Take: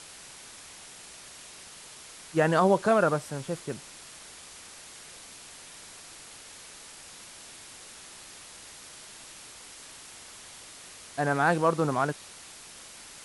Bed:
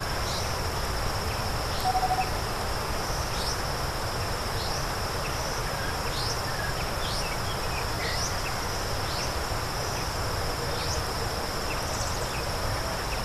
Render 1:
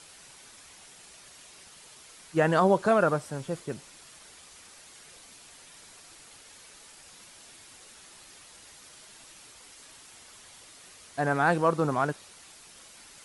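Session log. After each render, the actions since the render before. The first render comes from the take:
broadband denoise 6 dB, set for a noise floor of −48 dBFS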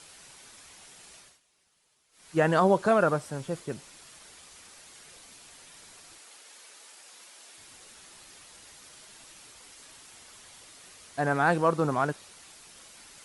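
0:01.17–0:02.34: duck −19 dB, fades 0.23 s
0:06.18–0:07.58: high-pass filter 370 Hz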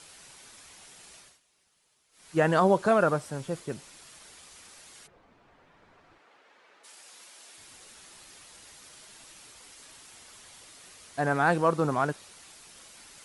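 0:05.06–0:06.83: low-pass filter 1,100 Hz → 2,000 Hz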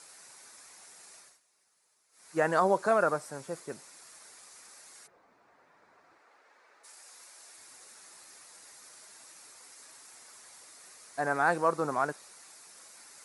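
high-pass filter 560 Hz 6 dB per octave
parametric band 3,100 Hz −11.5 dB 0.61 octaves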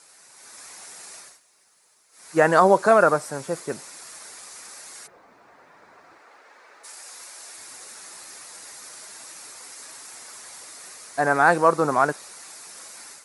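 automatic gain control gain up to 11 dB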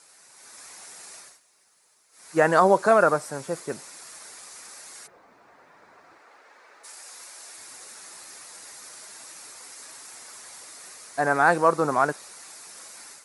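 level −2 dB

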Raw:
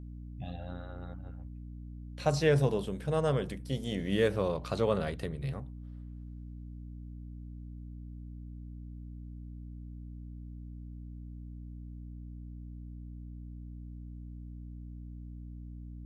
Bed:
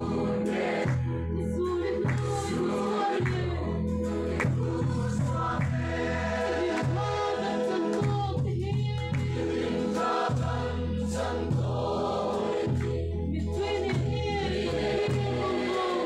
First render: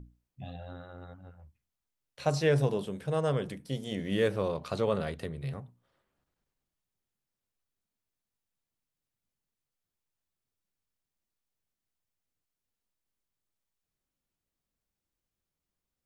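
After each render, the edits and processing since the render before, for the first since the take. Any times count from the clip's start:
mains-hum notches 60/120/180/240/300 Hz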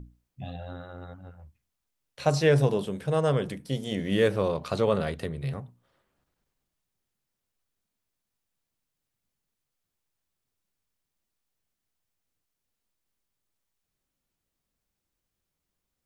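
level +4.5 dB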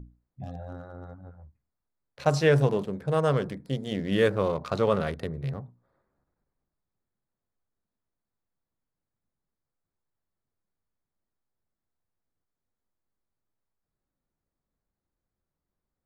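adaptive Wiener filter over 15 samples
dynamic equaliser 1,300 Hz, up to +4 dB, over −42 dBFS, Q 1.8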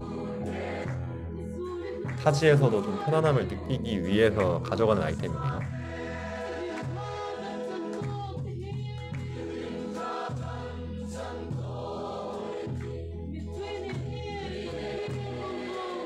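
mix in bed −6.5 dB

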